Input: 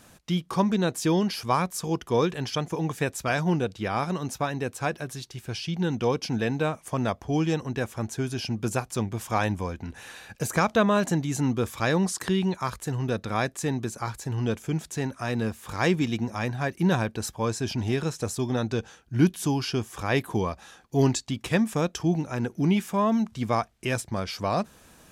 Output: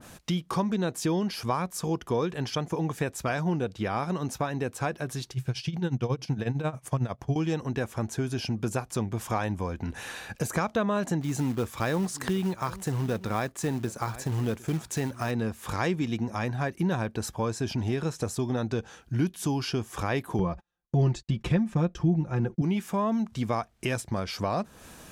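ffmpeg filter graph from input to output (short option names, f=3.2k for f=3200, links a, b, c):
-filter_complex "[0:a]asettb=1/sr,asplit=3[a][b][c];[a]atrim=end=5.314[d];[b]atrim=start=5.31:end=7.36,asetpts=PTS-STARTPTS,afade=t=in:d=0.004:c=qsin,afade=t=out:st=2.046:d=0.004:c=qsin,equalizer=f=130:t=o:w=0.31:g=12.5,tremolo=f=11:d=0.82[e];[c]atrim=start=7.356[f];[d][e]acrossfade=d=0.004:c1=hsin:c2=qsin[g];[g][f]acrossfade=d=0.004:c1=qsin:c2=hsin,asettb=1/sr,asplit=3[h][i][j];[h]atrim=end=11.214[k];[i]atrim=start=11.21:end=15.31,asetpts=PTS-STARTPTS,afade=t=in:d=0.004:c=qsin,afade=t=out:st=4.096:d=0.004:c=qsin,acrusher=bits=4:mode=log:mix=0:aa=0.000001,aecho=1:1:756:0.0841,atrim=end_sample=180810[l];[j]atrim=start=15.306[m];[k][l]acrossfade=d=0.004:c1=hsin:c2=qsin[n];[n][m]acrossfade=d=0.004:c1=qsin:c2=hsin,asettb=1/sr,asplit=3[o][p][q];[o]atrim=end=20.394[r];[p]atrim=start=20.39:end=22.62,asetpts=PTS-STARTPTS,afade=t=in:d=0.004:c=qsin,afade=t=out:st=2.226:d=0.004:c=qsin,aemphasis=mode=reproduction:type=bsi,agate=range=-42dB:threshold=-41dB:ratio=16:release=100:detection=peak,aecho=1:1:5.7:0.63,atrim=end_sample=98343[s];[q]atrim=start=22.616[t];[r][s]acrossfade=d=0.004:c1=hsin:c2=qsin[u];[u][t]acrossfade=d=0.004:c1=qsin:c2=hsin,acompressor=threshold=-34dB:ratio=2.5,adynamicequalizer=threshold=0.00282:dfrequency=1900:dqfactor=0.7:tfrequency=1900:tqfactor=0.7:attack=5:release=100:ratio=0.375:range=2:mode=cutabove:tftype=highshelf,volume=5.5dB"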